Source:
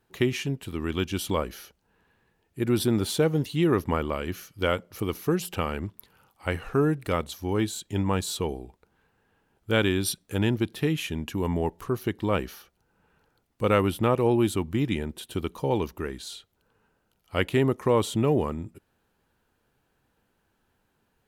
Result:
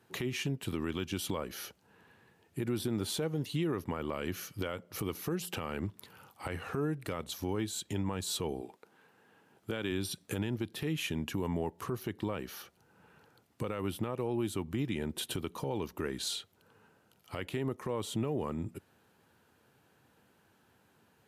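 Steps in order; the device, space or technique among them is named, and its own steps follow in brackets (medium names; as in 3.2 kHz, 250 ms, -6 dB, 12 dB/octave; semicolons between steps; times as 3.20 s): 8.60–9.90 s: high-pass 290 Hz -> 100 Hz 12 dB/octave; podcast mastering chain (high-pass 86 Hz 24 dB/octave; de-esser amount 55%; compression 4:1, threshold -36 dBFS, peak gain reduction 17 dB; peak limiter -29 dBFS, peak gain reduction 11 dB; trim +5.5 dB; MP3 96 kbps 32 kHz)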